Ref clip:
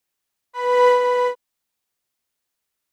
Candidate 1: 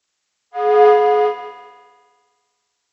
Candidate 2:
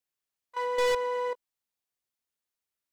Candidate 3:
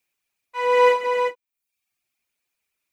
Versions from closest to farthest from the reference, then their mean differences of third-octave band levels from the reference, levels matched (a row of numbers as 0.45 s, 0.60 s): 3, 2, 1; 1.5 dB, 3.0 dB, 9.5 dB